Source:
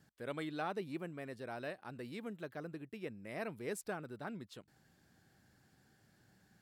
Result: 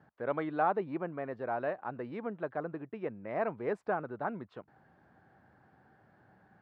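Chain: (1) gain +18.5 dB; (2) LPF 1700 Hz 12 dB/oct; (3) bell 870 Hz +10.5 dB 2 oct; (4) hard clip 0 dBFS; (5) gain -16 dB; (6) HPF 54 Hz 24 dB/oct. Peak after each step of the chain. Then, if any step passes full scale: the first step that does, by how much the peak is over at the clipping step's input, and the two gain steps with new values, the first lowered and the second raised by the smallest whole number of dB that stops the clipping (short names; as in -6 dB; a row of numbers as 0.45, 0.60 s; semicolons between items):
-8.0, -9.5, -1.5, -1.5, -17.5, -17.5 dBFS; no overload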